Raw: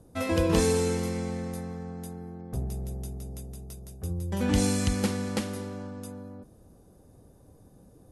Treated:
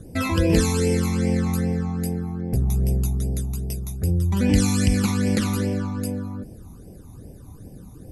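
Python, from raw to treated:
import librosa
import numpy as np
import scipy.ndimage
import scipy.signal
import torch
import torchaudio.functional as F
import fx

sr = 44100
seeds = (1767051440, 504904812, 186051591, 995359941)

p1 = fx.over_compress(x, sr, threshold_db=-34.0, ratio=-1.0)
p2 = x + (p1 * 10.0 ** (0.0 / 20.0))
p3 = fx.phaser_stages(p2, sr, stages=12, low_hz=500.0, high_hz=1300.0, hz=2.5, feedback_pct=20)
y = p3 * 10.0 ** (5.5 / 20.0)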